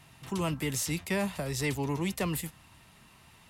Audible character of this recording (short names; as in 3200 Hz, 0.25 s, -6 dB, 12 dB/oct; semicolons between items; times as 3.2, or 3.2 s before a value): noise floor -58 dBFS; spectral tilt -4.5 dB/oct